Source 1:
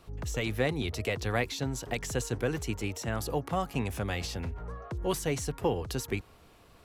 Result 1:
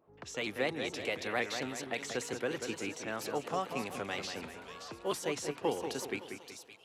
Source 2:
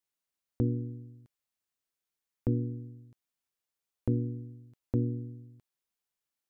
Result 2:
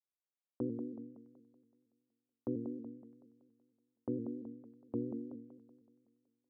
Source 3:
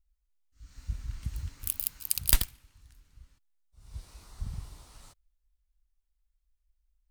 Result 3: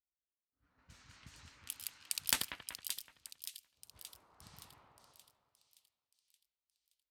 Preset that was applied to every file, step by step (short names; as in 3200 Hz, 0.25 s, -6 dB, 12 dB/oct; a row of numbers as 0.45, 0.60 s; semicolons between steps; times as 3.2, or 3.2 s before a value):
low-pass opened by the level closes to 610 Hz, open at -29.5 dBFS; weighting filter A; on a send: split-band echo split 2800 Hz, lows 0.188 s, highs 0.573 s, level -7.5 dB; on the sum: dynamic EQ 260 Hz, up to +6 dB, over -51 dBFS, Q 0.76; shaped vibrato saw up 4.3 Hz, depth 100 cents; gain -3.5 dB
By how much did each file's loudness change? -4.0, -8.5, -7.5 LU